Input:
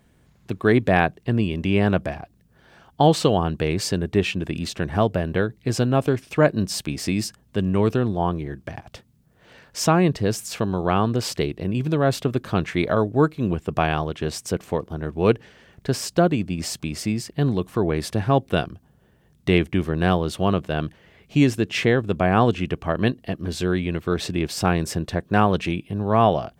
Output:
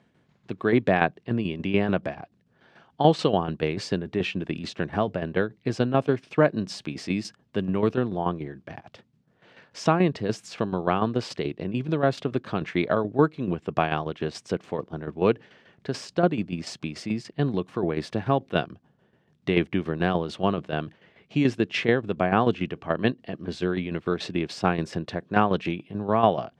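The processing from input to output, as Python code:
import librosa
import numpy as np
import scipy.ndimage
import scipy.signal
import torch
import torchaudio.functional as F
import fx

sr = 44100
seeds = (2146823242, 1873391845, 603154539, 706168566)

y = fx.tremolo_shape(x, sr, shape='saw_down', hz=6.9, depth_pct=65)
y = fx.bandpass_edges(y, sr, low_hz=140.0, high_hz=4400.0)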